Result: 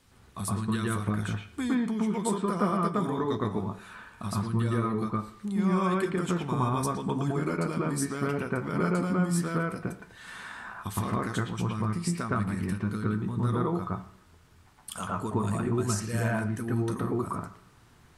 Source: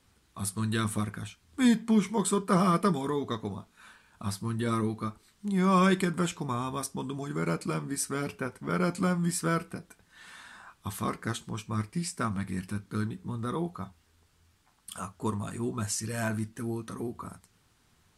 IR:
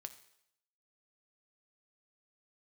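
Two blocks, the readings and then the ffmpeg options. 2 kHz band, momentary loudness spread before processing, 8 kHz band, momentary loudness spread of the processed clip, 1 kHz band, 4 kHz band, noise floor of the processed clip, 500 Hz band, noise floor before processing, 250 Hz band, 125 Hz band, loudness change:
+0.5 dB, 15 LU, −2.5 dB, 11 LU, +1.0 dB, −3.0 dB, −58 dBFS, +1.5 dB, −67 dBFS, +1.0 dB, +3.0 dB, +1.0 dB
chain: -filter_complex "[0:a]acompressor=threshold=-34dB:ratio=5,asplit=2[link_01][link_02];[1:a]atrim=start_sample=2205,lowpass=2000,adelay=114[link_03];[link_02][link_03]afir=irnorm=-1:irlink=0,volume=10.5dB[link_04];[link_01][link_04]amix=inputs=2:normalize=0,volume=3dB"

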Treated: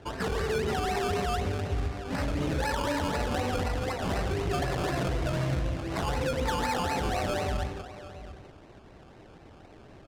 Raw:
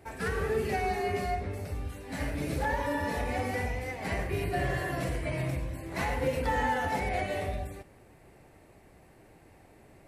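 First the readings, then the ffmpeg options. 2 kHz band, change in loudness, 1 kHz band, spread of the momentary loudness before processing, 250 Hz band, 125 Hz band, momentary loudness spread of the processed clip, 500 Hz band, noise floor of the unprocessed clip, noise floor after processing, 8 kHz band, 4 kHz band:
−1.0 dB, +2.0 dB, +1.0 dB, 8 LU, +3.0 dB, +3.0 dB, 5 LU, +1.5 dB, −57 dBFS, −52 dBFS, +5.0 dB, +7.0 dB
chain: -filter_complex "[0:a]alimiter=level_in=2.5dB:limit=-24dB:level=0:latency=1:release=32,volume=-2.5dB,asplit=2[link_01][link_02];[link_02]aecho=0:1:683:0.2[link_03];[link_01][link_03]amix=inputs=2:normalize=0,acrusher=samples=18:mix=1:aa=0.000001:lfo=1:lforange=10.8:lforate=4,adynamicsmooth=sensitivity=7.5:basefreq=5600,volume=5.5dB"

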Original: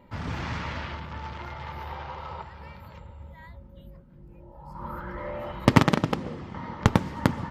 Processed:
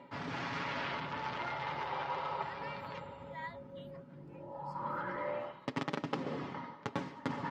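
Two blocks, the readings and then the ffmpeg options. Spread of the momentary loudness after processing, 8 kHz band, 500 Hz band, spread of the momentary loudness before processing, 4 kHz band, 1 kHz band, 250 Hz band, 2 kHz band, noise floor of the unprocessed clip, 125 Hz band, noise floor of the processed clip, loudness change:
11 LU, below −15 dB, −7.5 dB, 23 LU, −8.0 dB, −5.5 dB, −13.5 dB, −6.5 dB, −50 dBFS, −17.0 dB, −54 dBFS, −11.0 dB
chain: -af "aecho=1:1:7.2:0.47,areverse,acompressor=threshold=-38dB:ratio=5,areverse,highpass=220,lowpass=6000,volume=4.5dB"

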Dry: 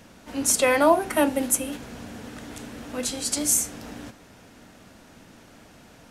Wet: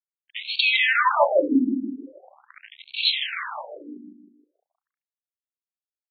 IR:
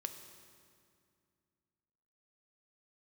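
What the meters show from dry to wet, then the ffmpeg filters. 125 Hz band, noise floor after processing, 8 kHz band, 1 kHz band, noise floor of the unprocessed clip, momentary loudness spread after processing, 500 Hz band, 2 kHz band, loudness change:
below −10 dB, below −85 dBFS, below −40 dB, +2.0 dB, −51 dBFS, 20 LU, −1.5 dB, +7.5 dB, +1.5 dB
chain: -filter_complex "[0:a]acrossover=split=2200[link_01][link_02];[link_02]dynaudnorm=framelen=210:gausssize=7:maxgain=13.5dB[link_03];[link_01][link_03]amix=inputs=2:normalize=0,highpass=frequency=130:width=0.5412,highpass=frequency=130:width=1.3066,equalizer=frequency=130:width_type=q:width=4:gain=6,equalizer=frequency=230:width_type=q:width=4:gain=6,equalizer=frequency=440:width_type=q:width=4:gain=-7,equalizer=frequency=740:width_type=q:width=4:gain=-8,equalizer=frequency=2300:width_type=q:width=4:gain=-4,equalizer=frequency=5200:width_type=q:width=4:gain=-3,lowpass=frequency=6100:width=0.5412,lowpass=frequency=6100:width=1.3066,asplit=2[link_04][link_05];[link_05]aeval=exprs='sgn(val(0))*max(abs(val(0))-0.00473,0)':channel_layout=same,volume=-10dB[link_06];[link_04][link_06]amix=inputs=2:normalize=0,acrusher=bits=3:mix=0:aa=0.5,aecho=1:1:157|314|471|628|785|942:0.631|0.278|0.122|0.0537|0.0236|0.0104,afftfilt=real='re*between(b*sr/1024,260*pow(3200/260,0.5+0.5*sin(2*PI*0.42*pts/sr))/1.41,260*pow(3200/260,0.5+0.5*sin(2*PI*0.42*pts/sr))*1.41)':imag='im*between(b*sr/1024,260*pow(3200/260,0.5+0.5*sin(2*PI*0.42*pts/sr))/1.41,260*pow(3200/260,0.5+0.5*sin(2*PI*0.42*pts/sr))*1.41)':win_size=1024:overlap=0.75,volume=7.5dB"

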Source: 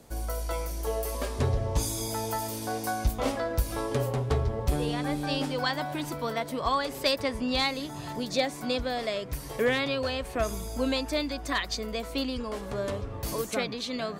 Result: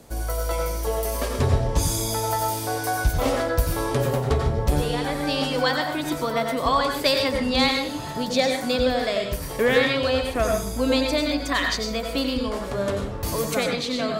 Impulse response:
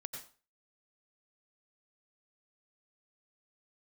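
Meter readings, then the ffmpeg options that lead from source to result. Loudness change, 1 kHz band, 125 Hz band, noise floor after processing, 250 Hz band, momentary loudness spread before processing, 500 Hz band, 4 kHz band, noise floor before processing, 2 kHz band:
+6.5 dB, +6.5 dB, +5.5 dB, −31 dBFS, +6.5 dB, 6 LU, +7.0 dB, +6.5 dB, −39 dBFS, +7.0 dB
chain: -filter_complex "[1:a]atrim=start_sample=2205[link_01];[0:a][link_01]afir=irnorm=-1:irlink=0,volume=9dB"

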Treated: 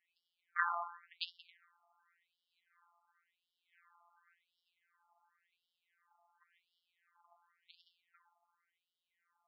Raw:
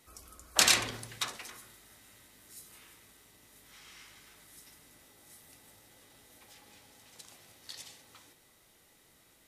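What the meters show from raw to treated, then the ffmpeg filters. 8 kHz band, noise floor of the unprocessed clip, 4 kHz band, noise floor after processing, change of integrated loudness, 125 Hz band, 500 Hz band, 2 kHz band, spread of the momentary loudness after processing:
below −40 dB, −64 dBFS, −18.5 dB, below −85 dBFS, −11.0 dB, below −40 dB, −13.0 dB, −7.5 dB, 9 LU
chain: -af "afftfilt=real='hypot(re,im)*cos(PI*b)':imag='0':win_size=1024:overlap=0.75,adynamicsmooth=sensitivity=4.5:basefreq=980,afftfilt=real='re*between(b*sr/1024,950*pow(4000/950,0.5+0.5*sin(2*PI*0.92*pts/sr))/1.41,950*pow(4000/950,0.5+0.5*sin(2*PI*0.92*pts/sr))*1.41)':imag='im*between(b*sr/1024,950*pow(4000/950,0.5+0.5*sin(2*PI*0.92*pts/sr))/1.41,950*pow(4000/950,0.5+0.5*sin(2*PI*0.92*pts/sr))*1.41)':win_size=1024:overlap=0.75,volume=5dB"

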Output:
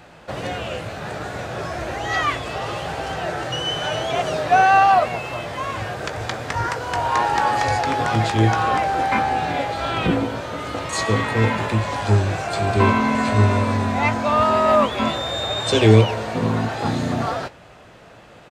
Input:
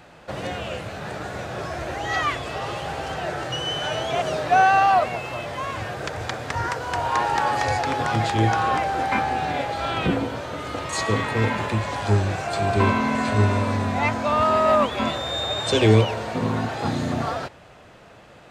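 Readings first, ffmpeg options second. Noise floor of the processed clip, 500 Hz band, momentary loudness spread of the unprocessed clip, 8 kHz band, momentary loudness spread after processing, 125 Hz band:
−45 dBFS, +2.5 dB, 12 LU, +2.5 dB, 12 LU, +3.5 dB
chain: -filter_complex "[0:a]asplit=2[link_01][link_02];[link_02]adelay=18,volume=-11.5dB[link_03];[link_01][link_03]amix=inputs=2:normalize=0,volume=2dB"

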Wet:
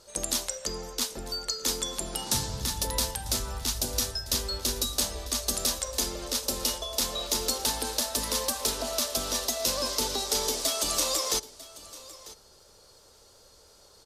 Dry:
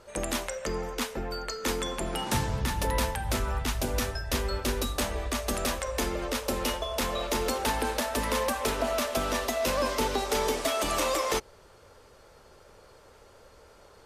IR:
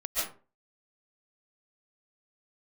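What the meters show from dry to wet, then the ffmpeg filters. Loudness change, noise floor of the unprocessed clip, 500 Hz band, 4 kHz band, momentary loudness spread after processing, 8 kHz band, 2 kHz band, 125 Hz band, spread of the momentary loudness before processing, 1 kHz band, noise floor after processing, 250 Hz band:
+1.5 dB, −55 dBFS, −5.5 dB, +5.5 dB, 7 LU, +7.5 dB, −7.0 dB, −5.0 dB, 5 LU, −6.0 dB, −57 dBFS, −5.0 dB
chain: -af "highshelf=frequency=3200:width_type=q:width=1.5:gain=11,aecho=1:1:946:0.119,volume=-5dB" -ar 48000 -c:a libmp3lame -b:a 224k

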